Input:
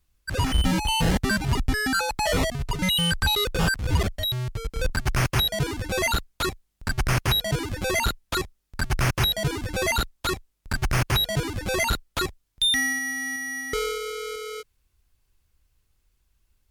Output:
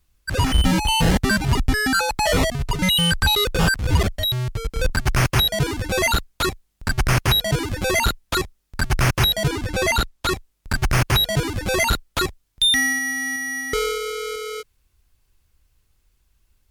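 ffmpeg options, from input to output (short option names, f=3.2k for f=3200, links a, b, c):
-filter_complex "[0:a]asettb=1/sr,asplit=3[a][b][c];[a]atrim=end=9.484[d];[b]atrim=start=9.48:end=10.31,asetpts=PTS-STARTPTS,afade=t=in:d=0.004:c=qsin,afade=t=out:st=0.826:d=0.004:c=qsin,highshelf=f=9.9k:g=-5.5[e];[c]atrim=start=10.306[f];[d][e]acrossfade=d=0.004:c1=hsin:c2=qsin[g];[g][f]acrossfade=d=0.004:c1=qsin:c2=hsin,volume=4.5dB"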